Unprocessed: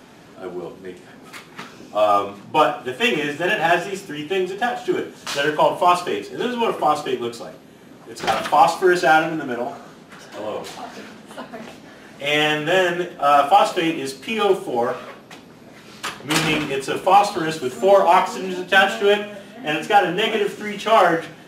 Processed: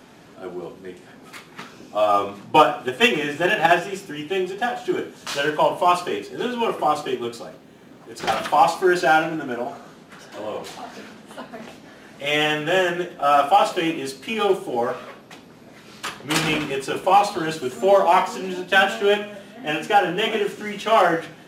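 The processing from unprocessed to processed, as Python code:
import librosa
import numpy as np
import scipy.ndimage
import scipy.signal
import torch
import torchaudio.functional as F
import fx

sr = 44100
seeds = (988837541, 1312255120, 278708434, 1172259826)

y = fx.transient(x, sr, attack_db=7, sustain_db=2, at=(2.13, 3.8))
y = fx.backlash(y, sr, play_db=-59.0, at=(7.48, 8.15))
y = F.gain(torch.from_numpy(y), -2.0).numpy()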